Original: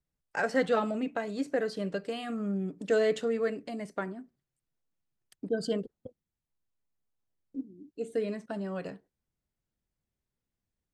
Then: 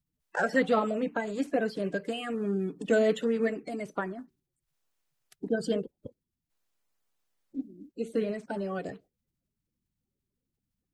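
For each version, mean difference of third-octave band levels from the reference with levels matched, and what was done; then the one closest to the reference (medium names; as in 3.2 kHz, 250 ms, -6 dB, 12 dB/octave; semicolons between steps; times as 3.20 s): 2.5 dB: coarse spectral quantiser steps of 30 dB; dynamic bell 4.6 kHz, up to -5 dB, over -58 dBFS, Q 2.1; trim +2.5 dB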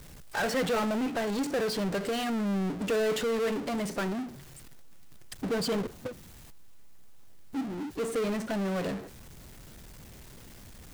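11.0 dB: power-law waveshaper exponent 0.35; trim -8 dB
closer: first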